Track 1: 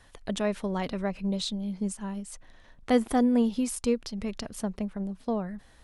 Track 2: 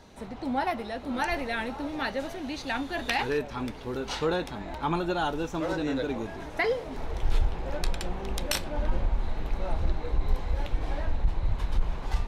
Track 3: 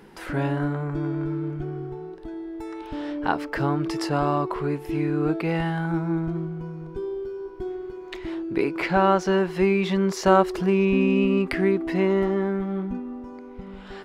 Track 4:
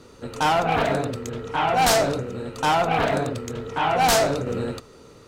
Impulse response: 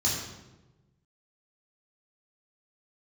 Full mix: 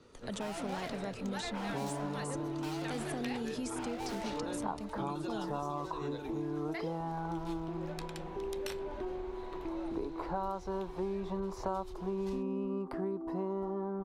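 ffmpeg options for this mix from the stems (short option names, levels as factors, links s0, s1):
-filter_complex "[0:a]agate=range=0.0224:threshold=0.00562:ratio=3:detection=peak,equalizer=f=7400:t=o:w=1.3:g=9.5,alimiter=limit=0.0708:level=0:latency=1,volume=0.708[s0];[1:a]adelay=150,volume=0.335[s1];[2:a]highshelf=f=1500:t=q:w=3:g=-13.5,adelay=1400,volume=0.501[s2];[3:a]lowpass=5800,asoftclip=type=hard:threshold=0.0422,volume=0.251[s3];[s0][s1][s2][s3]amix=inputs=4:normalize=0,acrossover=split=200|3300[s4][s5][s6];[s4]acompressor=threshold=0.00447:ratio=4[s7];[s5]acompressor=threshold=0.0158:ratio=4[s8];[s6]acompressor=threshold=0.00447:ratio=4[s9];[s7][s8][s9]amix=inputs=3:normalize=0"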